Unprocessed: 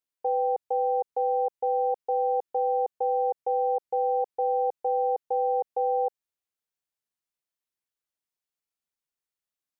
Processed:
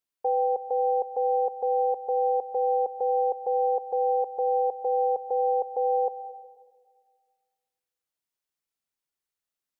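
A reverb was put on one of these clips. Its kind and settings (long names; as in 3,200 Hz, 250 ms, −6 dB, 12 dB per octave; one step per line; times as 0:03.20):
comb and all-pass reverb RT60 1.7 s, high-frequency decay 0.95×, pre-delay 85 ms, DRR 12.5 dB
level +1 dB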